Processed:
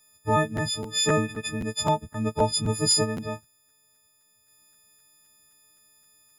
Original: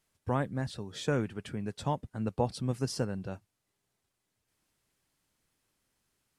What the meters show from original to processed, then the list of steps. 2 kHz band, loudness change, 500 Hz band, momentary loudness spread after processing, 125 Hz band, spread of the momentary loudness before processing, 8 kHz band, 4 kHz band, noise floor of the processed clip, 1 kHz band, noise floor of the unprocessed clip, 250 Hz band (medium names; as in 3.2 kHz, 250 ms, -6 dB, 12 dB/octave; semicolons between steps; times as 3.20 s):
+10.5 dB, +9.0 dB, +7.5 dB, 9 LU, +4.5 dB, 7 LU, +19.0 dB, +17.5 dB, -65 dBFS, +10.0 dB, -83 dBFS, +5.5 dB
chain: partials quantised in pitch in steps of 6 st; crackling interface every 0.26 s, samples 512, repeat, from 0.56 s; trim +5.5 dB